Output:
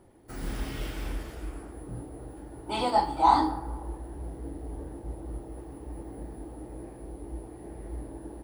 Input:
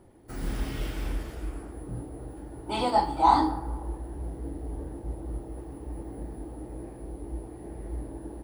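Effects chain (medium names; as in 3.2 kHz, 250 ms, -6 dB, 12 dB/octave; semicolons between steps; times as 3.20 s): bass shelf 370 Hz -3 dB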